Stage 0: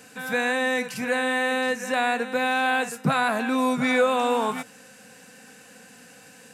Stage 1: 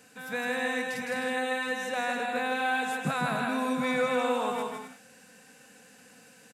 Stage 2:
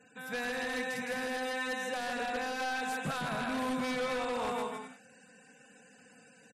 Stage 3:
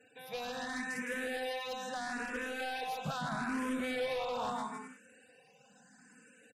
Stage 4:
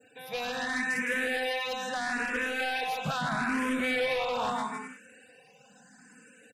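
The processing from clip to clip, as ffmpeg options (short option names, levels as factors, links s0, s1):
-af "aecho=1:1:160|256|313.6|348.2|368.9:0.631|0.398|0.251|0.158|0.1,volume=0.398"
-af "alimiter=limit=0.1:level=0:latency=1:release=81,aeval=exprs='0.0531*(abs(mod(val(0)/0.0531+3,4)-2)-1)':c=same,afftfilt=real='re*gte(hypot(re,im),0.00158)':imag='im*gte(hypot(re,im),0.00158)':win_size=1024:overlap=0.75,volume=0.75"
-filter_complex "[0:a]asplit=2[s0][s1];[s1]afreqshift=0.77[s2];[s0][s2]amix=inputs=2:normalize=1"
-af "adynamicequalizer=threshold=0.00224:dfrequency=2200:dqfactor=1.2:tfrequency=2200:tqfactor=1.2:attack=5:release=100:ratio=0.375:range=3:mode=boostabove:tftype=bell,volume=1.78"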